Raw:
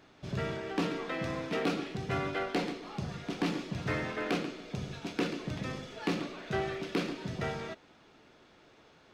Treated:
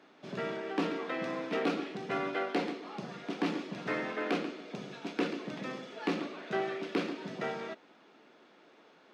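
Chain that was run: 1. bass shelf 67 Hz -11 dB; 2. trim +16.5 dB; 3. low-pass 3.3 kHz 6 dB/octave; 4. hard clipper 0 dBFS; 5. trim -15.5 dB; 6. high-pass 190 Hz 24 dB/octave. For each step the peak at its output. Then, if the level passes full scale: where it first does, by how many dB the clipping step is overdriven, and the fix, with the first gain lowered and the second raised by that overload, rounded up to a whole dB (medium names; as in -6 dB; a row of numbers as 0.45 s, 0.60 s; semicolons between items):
-18.5 dBFS, -2.0 dBFS, -3.0 dBFS, -3.0 dBFS, -18.5 dBFS, -18.0 dBFS; nothing clips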